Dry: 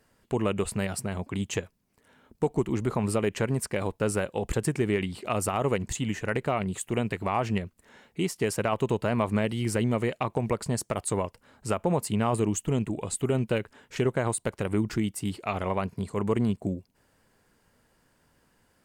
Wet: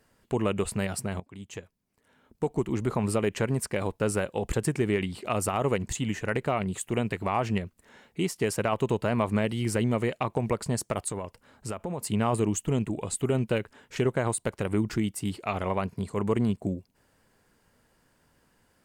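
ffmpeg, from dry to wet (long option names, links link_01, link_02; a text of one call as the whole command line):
ffmpeg -i in.wav -filter_complex "[0:a]asettb=1/sr,asplit=3[link_01][link_02][link_03];[link_01]atrim=end=11.084[link_04];[link_02]atrim=start=11.08:end=12.01,asetpts=PTS-STARTPTS,afade=type=in:duration=0.004:curve=qsin,afade=type=out:start_time=0.926:duration=0.004:curve=qsin,acompressor=threshold=-31dB:ratio=3:attack=3.2:release=140:knee=1:detection=peak[link_05];[link_03]atrim=start=12.006[link_06];[link_04][link_05]acrossfade=duration=0.004:curve1=hsin:curve2=qsin[link_07];[link_07][link_06]acrossfade=duration=0.004:curve1=qsin:curve2=hsin,asplit=2[link_08][link_09];[link_08]atrim=end=1.2,asetpts=PTS-STARTPTS,afade=type=out:start_time=1.196:duration=0.004:curve=hsin:silence=0.141254[link_10];[link_09]atrim=start=1.2,asetpts=PTS-STARTPTS,afade=type=in:duration=1.71:silence=0.141254[link_11];[link_10][link_11]concat=n=2:v=0:a=1" out.wav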